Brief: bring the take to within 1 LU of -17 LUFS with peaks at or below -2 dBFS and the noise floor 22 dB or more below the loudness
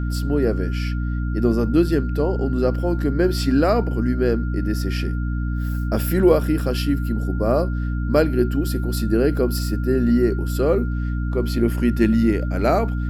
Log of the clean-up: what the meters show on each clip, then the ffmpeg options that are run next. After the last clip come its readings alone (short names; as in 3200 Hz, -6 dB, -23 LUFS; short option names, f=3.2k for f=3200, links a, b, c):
hum 60 Hz; harmonics up to 300 Hz; hum level -21 dBFS; steady tone 1400 Hz; tone level -38 dBFS; loudness -21.0 LUFS; peak -3.5 dBFS; loudness target -17.0 LUFS
-> -af "bandreject=f=60:t=h:w=4,bandreject=f=120:t=h:w=4,bandreject=f=180:t=h:w=4,bandreject=f=240:t=h:w=4,bandreject=f=300:t=h:w=4"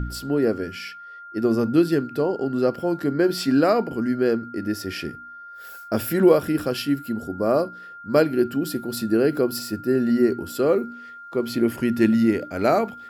hum none; steady tone 1400 Hz; tone level -38 dBFS
-> -af "bandreject=f=1.4k:w=30"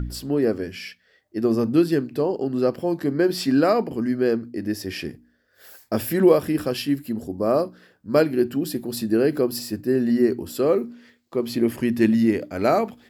steady tone none; loudness -22.5 LUFS; peak -4.5 dBFS; loudness target -17.0 LUFS
-> -af "volume=5.5dB,alimiter=limit=-2dB:level=0:latency=1"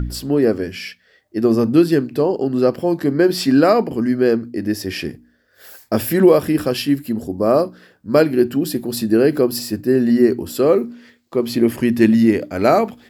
loudness -17.0 LUFS; peak -2.0 dBFS; noise floor -58 dBFS